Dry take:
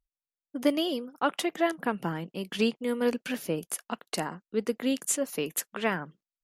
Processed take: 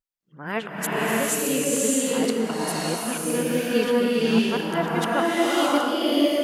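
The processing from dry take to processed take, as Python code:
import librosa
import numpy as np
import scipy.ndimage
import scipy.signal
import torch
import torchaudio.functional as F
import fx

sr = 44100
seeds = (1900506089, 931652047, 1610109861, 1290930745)

y = x[::-1].copy()
y = fx.rev_bloom(y, sr, seeds[0], attack_ms=620, drr_db=-7.0)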